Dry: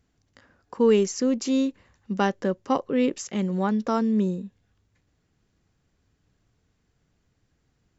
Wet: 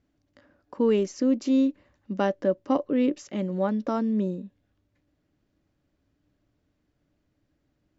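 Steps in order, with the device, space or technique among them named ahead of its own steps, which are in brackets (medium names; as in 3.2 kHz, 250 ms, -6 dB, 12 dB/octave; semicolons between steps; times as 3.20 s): inside a cardboard box (low-pass 5.2 kHz 12 dB/octave; small resonant body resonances 300/580 Hz, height 12 dB, ringing for 55 ms); trim -5 dB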